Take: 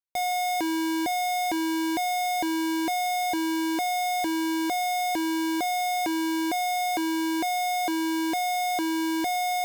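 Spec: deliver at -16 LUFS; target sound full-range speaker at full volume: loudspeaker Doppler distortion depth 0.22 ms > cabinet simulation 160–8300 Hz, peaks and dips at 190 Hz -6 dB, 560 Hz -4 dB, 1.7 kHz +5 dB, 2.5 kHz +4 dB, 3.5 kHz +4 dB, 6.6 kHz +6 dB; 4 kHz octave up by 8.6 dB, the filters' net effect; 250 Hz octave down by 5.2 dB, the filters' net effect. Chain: peaking EQ 250 Hz -7 dB; peaking EQ 4 kHz +6 dB; loudspeaker Doppler distortion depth 0.22 ms; cabinet simulation 160–8300 Hz, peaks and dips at 190 Hz -6 dB, 560 Hz -4 dB, 1.7 kHz +5 dB, 2.5 kHz +4 dB, 3.5 kHz +4 dB, 6.6 kHz +6 dB; trim +9 dB

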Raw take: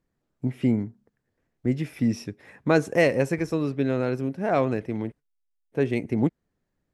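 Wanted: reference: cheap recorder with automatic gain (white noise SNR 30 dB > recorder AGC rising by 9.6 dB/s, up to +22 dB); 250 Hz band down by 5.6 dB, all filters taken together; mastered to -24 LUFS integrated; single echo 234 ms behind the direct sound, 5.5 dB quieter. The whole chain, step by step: peaking EQ 250 Hz -7 dB; delay 234 ms -5.5 dB; white noise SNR 30 dB; recorder AGC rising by 9.6 dB/s, up to +22 dB; trim +2 dB

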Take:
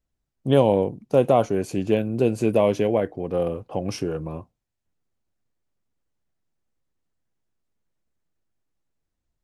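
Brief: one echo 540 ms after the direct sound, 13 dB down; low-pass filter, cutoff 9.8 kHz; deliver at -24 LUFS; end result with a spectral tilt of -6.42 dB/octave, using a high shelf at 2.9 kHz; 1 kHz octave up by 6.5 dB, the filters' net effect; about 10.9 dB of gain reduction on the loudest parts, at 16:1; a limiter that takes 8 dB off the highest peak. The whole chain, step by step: low-pass 9.8 kHz; peaking EQ 1 kHz +9 dB; treble shelf 2.9 kHz +3 dB; compression 16:1, threshold -20 dBFS; peak limiter -16 dBFS; delay 540 ms -13 dB; trim +4.5 dB

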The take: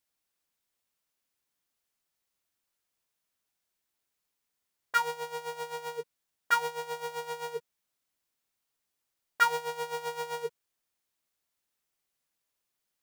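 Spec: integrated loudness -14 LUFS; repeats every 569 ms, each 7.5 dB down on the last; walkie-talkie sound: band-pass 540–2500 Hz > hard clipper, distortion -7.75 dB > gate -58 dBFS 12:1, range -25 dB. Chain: band-pass 540–2500 Hz; feedback delay 569 ms, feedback 42%, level -7.5 dB; hard clipper -26.5 dBFS; gate -58 dBFS 12:1, range -25 dB; trim +23 dB

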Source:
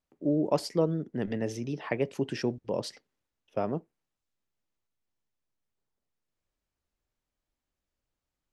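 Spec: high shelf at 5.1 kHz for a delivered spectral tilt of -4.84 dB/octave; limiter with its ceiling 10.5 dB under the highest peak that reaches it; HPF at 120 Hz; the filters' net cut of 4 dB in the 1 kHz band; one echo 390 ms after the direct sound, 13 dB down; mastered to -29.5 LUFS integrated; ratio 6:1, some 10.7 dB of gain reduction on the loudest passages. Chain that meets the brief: high-pass 120 Hz; peaking EQ 1 kHz -6 dB; treble shelf 5.1 kHz +8 dB; compression 6:1, threshold -33 dBFS; peak limiter -30 dBFS; delay 390 ms -13 dB; trim +11.5 dB

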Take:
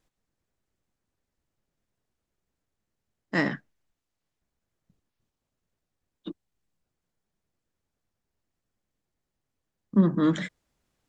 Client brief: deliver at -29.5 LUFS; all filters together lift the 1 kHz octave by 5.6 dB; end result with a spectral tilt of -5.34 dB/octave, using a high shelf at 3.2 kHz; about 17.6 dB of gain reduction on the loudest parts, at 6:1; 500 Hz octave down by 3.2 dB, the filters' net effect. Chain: peaking EQ 500 Hz -7 dB; peaking EQ 1 kHz +9 dB; treble shelf 3.2 kHz -4.5 dB; compression 6:1, threshold -35 dBFS; trim +11.5 dB

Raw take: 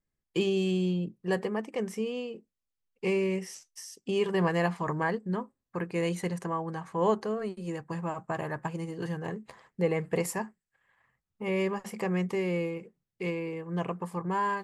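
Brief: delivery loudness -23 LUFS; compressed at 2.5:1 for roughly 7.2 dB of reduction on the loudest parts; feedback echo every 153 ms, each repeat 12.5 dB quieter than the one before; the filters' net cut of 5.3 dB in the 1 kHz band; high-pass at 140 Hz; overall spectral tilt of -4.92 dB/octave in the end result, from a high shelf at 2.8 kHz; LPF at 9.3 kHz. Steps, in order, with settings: high-pass 140 Hz; low-pass 9.3 kHz; peaking EQ 1 kHz -7 dB; treble shelf 2.8 kHz +7 dB; compression 2.5:1, threshold -34 dBFS; feedback delay 153 ms, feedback 24%, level -12.5 dB; trim +14.5 dB

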